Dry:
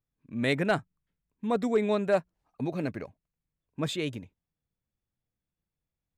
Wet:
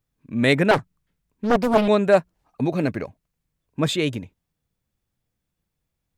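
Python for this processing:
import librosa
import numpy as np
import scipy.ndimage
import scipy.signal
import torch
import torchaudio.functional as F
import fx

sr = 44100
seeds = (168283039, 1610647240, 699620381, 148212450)

y = fx.doppler_dist(x, sr, depth_ms=0.84, at=(0.71, 1.88))
y = y * 10.0 ** (9.0 / 20.0)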